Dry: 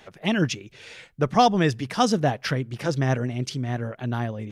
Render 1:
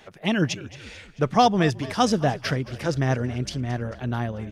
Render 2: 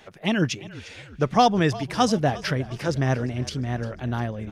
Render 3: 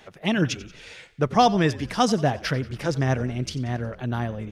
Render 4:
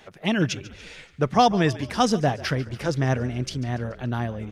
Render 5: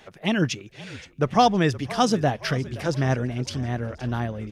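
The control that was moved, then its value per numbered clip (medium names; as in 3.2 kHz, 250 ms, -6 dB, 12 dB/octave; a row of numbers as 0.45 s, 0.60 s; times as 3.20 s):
frequency-shifting echo, time: 221 ms, 352 ms, 91 ms, 143 ms, 520 ms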